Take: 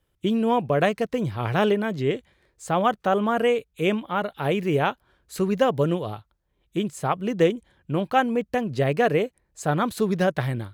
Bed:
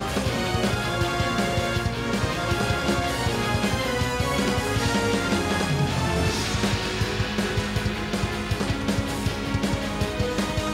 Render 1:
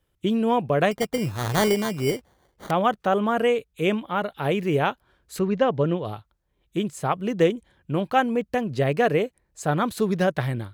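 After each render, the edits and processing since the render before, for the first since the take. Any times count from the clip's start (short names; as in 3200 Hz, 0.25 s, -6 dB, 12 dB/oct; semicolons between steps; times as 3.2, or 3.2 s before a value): 0.91–2.71 sample-rate reducer 2600 Hz; 5.39–6.05 air absorption 150 m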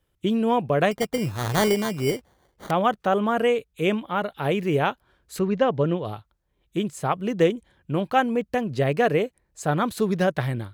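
nothing audible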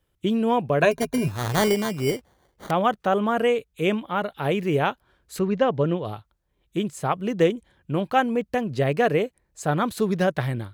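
0.82–1.28 ripple EQ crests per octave 1.5, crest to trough 13 dB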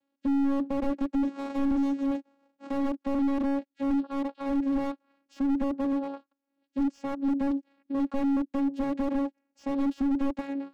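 vocoder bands 8, saw 277 Hz; slew limiter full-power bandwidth 19 Hz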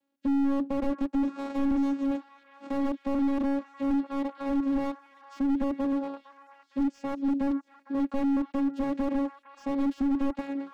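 delay with a stepping band-pass 0.458 s, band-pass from 1300 Hz, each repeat 0.7 oct, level -8 dB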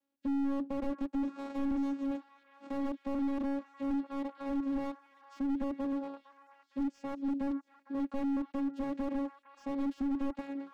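gain -6.5 dB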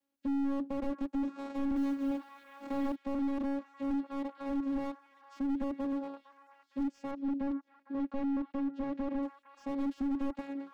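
1.76–2.96 G.711 law mismatch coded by mu; 7.11–9.23 air absorption 130 m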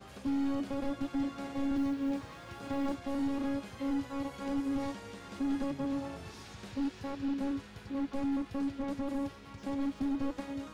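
add bed -23.5 dB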